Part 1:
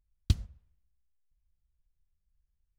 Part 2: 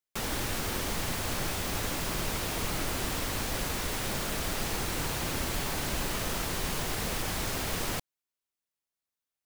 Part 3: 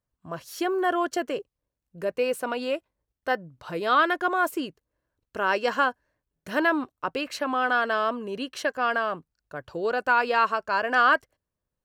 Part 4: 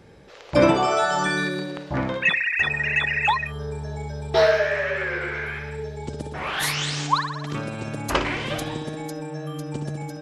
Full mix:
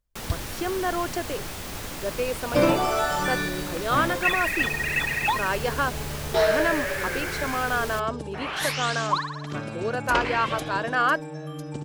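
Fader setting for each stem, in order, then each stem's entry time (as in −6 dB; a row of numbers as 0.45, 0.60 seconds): −2.5, −2.5, −2.5, −3.5 decibels; 0.00, 0.00, 0.00, 2.00 seconds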